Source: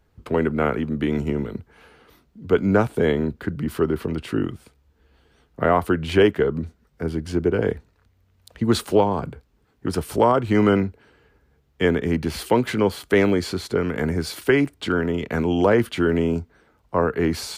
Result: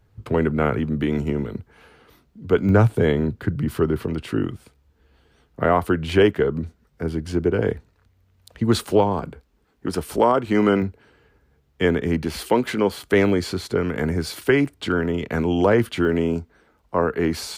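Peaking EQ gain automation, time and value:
peaking EQ 110 Hz 0.58 oct
+12.5 dB
from 1.02 s +3.5 dB
from 2.69 s +12 dB
from 4.04 s +2.5 dB
from 9.19 s -9 dB
from 10.82 s +1.5 dB
from 12.23 s -9 dB
from 12.97 s +2.5 dB
from 16.05 s -6 dB

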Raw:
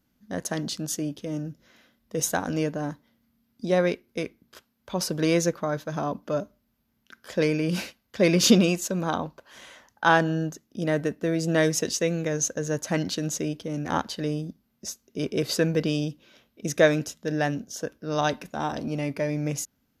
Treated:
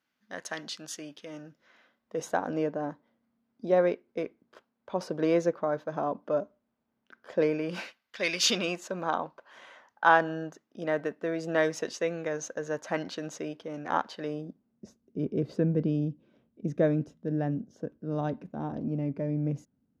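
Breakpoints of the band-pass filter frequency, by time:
band-pass filter, Q 0.74
1.19 s 1.9 kHz
2.49 s 630 Hz
7.45 s 630 Hz
8.39 s 3.4 kHz
8.77 s 990 Hz
14.26 s 990 Hz
14.90 s 190 Hz

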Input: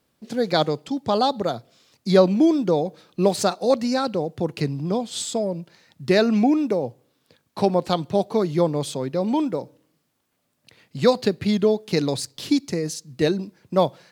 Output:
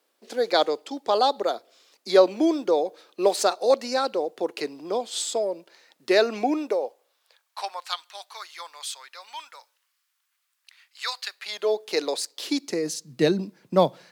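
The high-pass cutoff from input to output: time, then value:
high-pass 24 dB/octave
6.54 s 350 Hz
7.97 s 1.2 kHz
11.33 s 1.2 kHz
11.74 s 400 Hz
12.43 s 400 Hz
13.11 s 150 Hz

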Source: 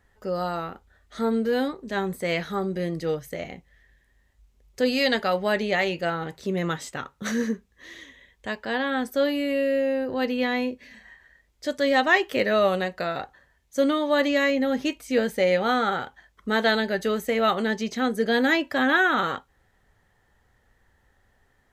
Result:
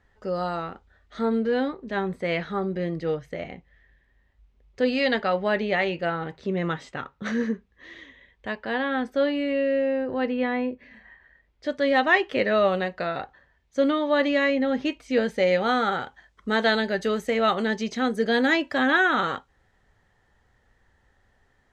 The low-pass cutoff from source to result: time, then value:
0.71 s 5.4 kHz
1.64 s 3.3 kHz
9.81 s 3.3 kHz
10.57 s 1.9 kHz
12.09 s 3.9 kHz
14.90 s 3.9 kHz
15.69 s 7.4 kHz

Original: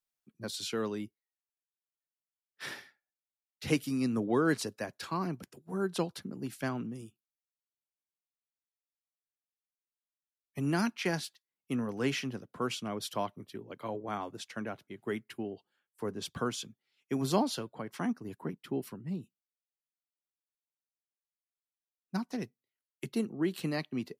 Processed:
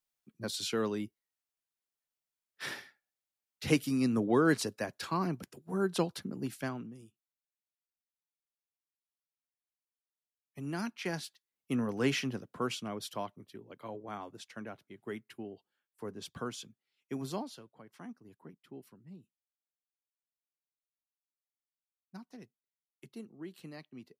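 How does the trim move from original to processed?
6.46 s +1.5 dB
6.95 s -8 dB
10.64 s -8 dB
11.83 s +1.5 dB
12.35 s +1.5 dB
13.37 s -5.5 dB
17.16 s -5.5 dB
17.57 s -14 dB

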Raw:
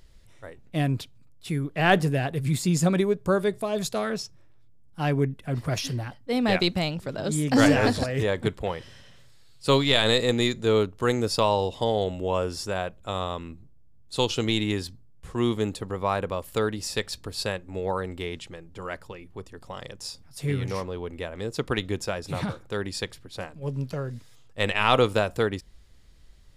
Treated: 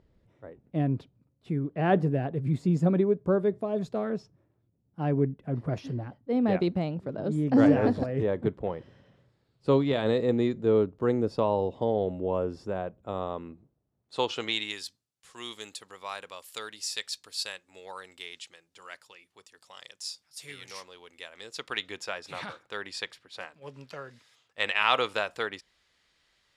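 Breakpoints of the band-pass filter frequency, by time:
band-pass filter, Q 0.6
12.97 s 290 Hz
14.30 s 1.1 kHz
14.83 s 5.7 kHz
21.13 s 5.7 kHz
22.08 s 2.2 kHz

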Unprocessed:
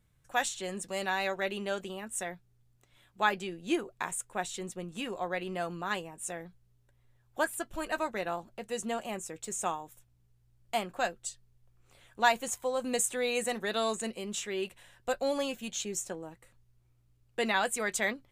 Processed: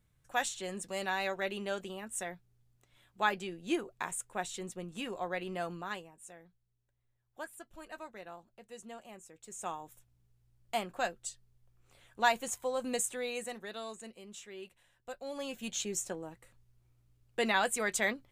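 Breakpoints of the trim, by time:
5.72 s -2.5 dB
6.26 s -13.5 dB
9.39 s -13.5 dB
9.84 s -2.5 dB
12.88 s -2.5 dB
13.86 s -12.5 dB
15.24 s -12.5 dB
15.66 s -0.5 dB

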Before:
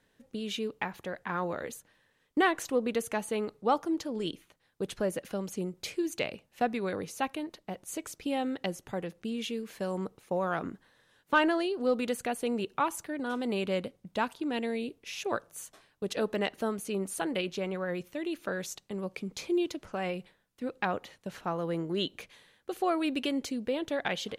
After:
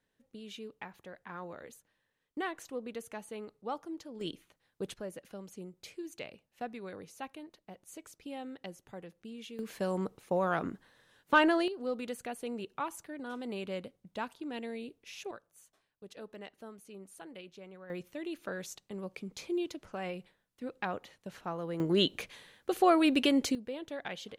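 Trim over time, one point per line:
-11 dB
from 4.21 s -4 dB
from 4.94 s -11 dB
from 9.59 s +0.5 dB
from 11.68 s -7.5 dB
from 15.31 s -16.5 dB
from 17.90 s -5 dB
from 21.80 s +4.5 dB
from 23.55 s -8.5 dB

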